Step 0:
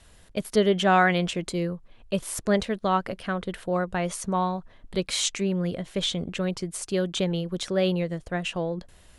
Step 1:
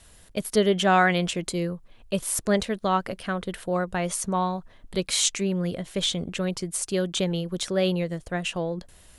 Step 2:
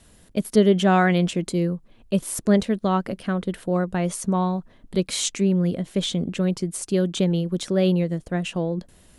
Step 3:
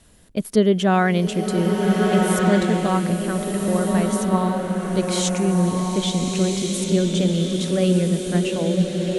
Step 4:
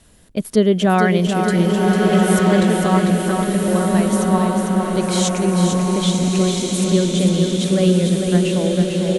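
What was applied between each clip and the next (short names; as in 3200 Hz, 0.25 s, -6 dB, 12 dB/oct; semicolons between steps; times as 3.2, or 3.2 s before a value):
high shelf 7000 Hz +9 dB
bell 230 Hz +10 dB 2 oct; gain -2.5 dB
bloom reverb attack 1.51 s, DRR 0 dB
feedback echo 0.449 s, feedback 57%, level -6 dB; gain +2 dB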